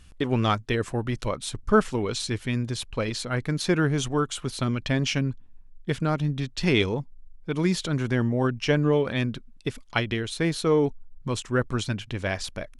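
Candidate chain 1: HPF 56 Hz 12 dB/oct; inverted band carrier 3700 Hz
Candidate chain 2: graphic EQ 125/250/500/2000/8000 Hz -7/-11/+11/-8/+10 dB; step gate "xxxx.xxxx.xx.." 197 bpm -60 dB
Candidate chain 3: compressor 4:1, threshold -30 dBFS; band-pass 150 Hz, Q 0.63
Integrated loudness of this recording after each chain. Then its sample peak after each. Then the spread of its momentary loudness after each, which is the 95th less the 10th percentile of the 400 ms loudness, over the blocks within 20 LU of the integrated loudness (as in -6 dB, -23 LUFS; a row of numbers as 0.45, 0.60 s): -23.0, -26.5, -37.5 LUFS; -6.5, -6.0, -22.0 dBFS; 10, 11, 7 LU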